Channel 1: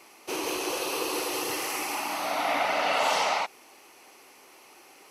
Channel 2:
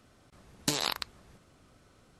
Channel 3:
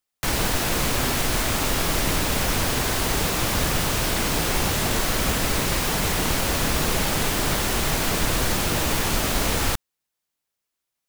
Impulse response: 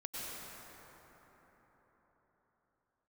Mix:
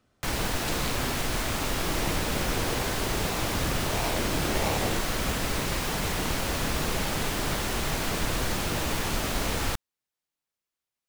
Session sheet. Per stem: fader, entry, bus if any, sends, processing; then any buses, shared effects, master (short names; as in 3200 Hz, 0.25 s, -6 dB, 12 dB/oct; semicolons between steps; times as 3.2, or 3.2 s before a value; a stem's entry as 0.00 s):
-5.5 dB, 1.55 s, no send, steep high-pass 290 Hz 48 dB/oct; decimation with a swept rate 38×, swing 60% 1.5 Hz
-7.5 dB, 0.00 s, no send, dry
-5.0 dB, 0.00 s, no send, dry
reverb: off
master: high shelf 6900 Hz -4.5 dB